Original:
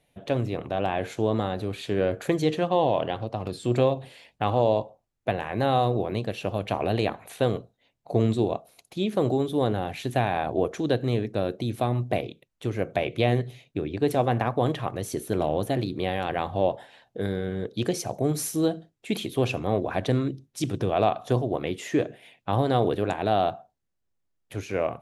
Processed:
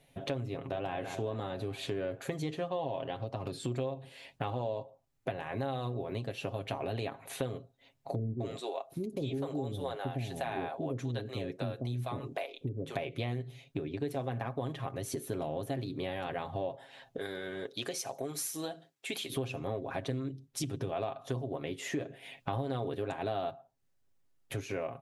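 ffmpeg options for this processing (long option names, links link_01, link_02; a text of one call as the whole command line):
ffmpeg -i in.wav -filter_complex "[0:a]asplit=2[link_01][link_02];[link_02]afade=type=in:start_time=0.51:duration=0.01,afade=type=out:start_time=0.93:duration=0.01,aecho=0:1:210|420|630|840|1050|1260|1470:0.334965|0.200979|0.120588|0.0723525|0.0434115|0.0260469|0.0156281[link_03];[link_01][link_03]amix=inputs=2:normalize=0,asettb=1/sr,asplit=3[link_04][link_05][link_06];[link_04]atrim=end=8.154[link_07];[link_05]atrim=start=8.15:end=12.95,asetpts=PTS-STARTPTS,afade=type=in:duration=0.004:curve=qsin,afade=type=out:start_time=4.796:duration=0.004:curve=qsin,acrossover=split=470[link_08][link_09];[link_09]adelay=250[link_10];[link_08][link_10]amix=inputs=2:normalize=0,atrim=end_sample=211680[link_11];[link_06]atrim=start=12.946[link_12];[link_07][link_11]acrossfade=duration=0.004:curve1=hsin:curve2=qsin[link_13];[link_13][link_12]acrossfade=duration=0.004:curve1=qsin:curve2=hsin,asettb=1/sr,asplit=3[link_14][link_15][link_16];[link_14]atrim=end=17.184[link_17];[link_15]atrim=start=17.18:end=19.3,asetpts=PTS-STARTPTS,afade=type=in:duration=0.004:curve=qsin,afade=type=out:start_time=2.116:duration=0.004:curve=qsin,highpass=frequency=910:poles=1[link_18];[link_16]atrim=start=19.296[link_19];[link_17][link_18]acrossfade=duration=0.004:curve1=hsin:curve2=qsin[link_20];[link_20][link_19]acrossfade=duration=0.004:curve1=qsin:curve2=hsin,asplit=3[link_21][link_22][link_23];[link_21]atrim=end=22.012[link_24];[link_22]atrim=start=22.008:end=23.512,asetpts=PTS-STARTPTS,volume=3dB[link_25];[link_23]atrim=start=23.508[link_26];[link_24][link_25]acrossfade=duration=0.004:curve1=hsin:curve2=hsin[link_27];[link_27][link_26]acrossfade=duration=0.004:curve1=hsin:curve2=hsin,aecho=1:1:7.4:0.57,acompressor=threshold=-38dB:ratio=4,volume=2.5dB" out.wav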